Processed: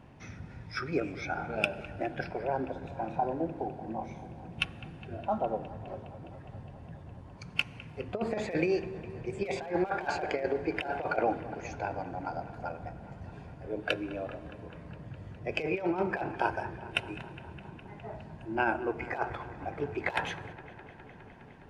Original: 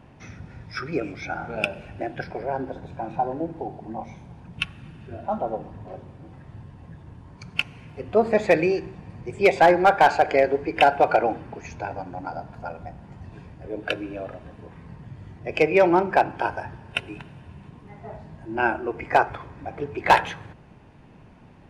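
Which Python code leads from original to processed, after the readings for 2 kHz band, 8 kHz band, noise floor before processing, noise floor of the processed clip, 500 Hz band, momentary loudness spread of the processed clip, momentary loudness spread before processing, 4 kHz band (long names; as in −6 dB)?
−8.5 dB, can't be measured, −49 dBFS, −50 dBFS, −10.5 dB, 16 LU, 23 LU, −6.5 dB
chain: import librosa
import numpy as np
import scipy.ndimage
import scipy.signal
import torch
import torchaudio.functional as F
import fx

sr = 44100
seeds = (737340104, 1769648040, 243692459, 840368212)

y = fx.over_compress(x, sr, threshold_db=-21.0, ratio=-0.5)
y = fx.echo_wet_lowpass(y, sr, ms=206, feedback_pct=80, hz=2600.0, wet_db=-17.0)
y = y * librosa.db_to_amplitude(-7.0)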